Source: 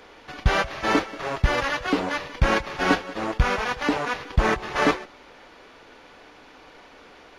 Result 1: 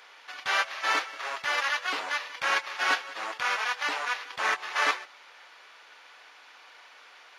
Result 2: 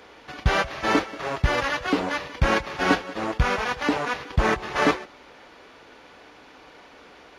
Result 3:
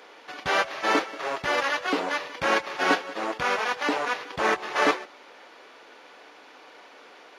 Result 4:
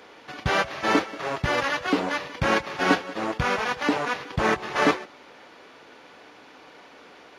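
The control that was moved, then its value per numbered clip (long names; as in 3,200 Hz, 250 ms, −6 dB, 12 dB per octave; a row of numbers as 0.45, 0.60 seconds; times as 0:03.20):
high-pass filter, corner frequency: 1,100, 41, 360, 120 Hertz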